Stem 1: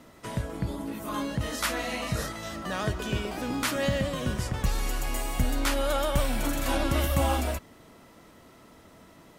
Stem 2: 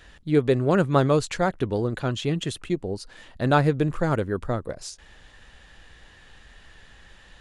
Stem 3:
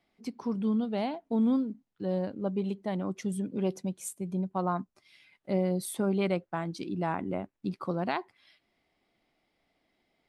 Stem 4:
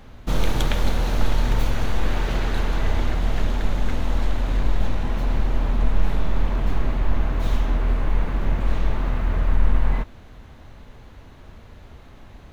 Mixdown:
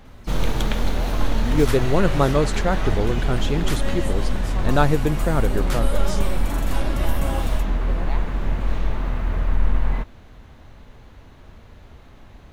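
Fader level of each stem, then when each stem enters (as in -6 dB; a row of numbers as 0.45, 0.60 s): -3.5, +0.5, -5.5, -1.0 dB; 0.05, 1.25, 0.00, 0.00 s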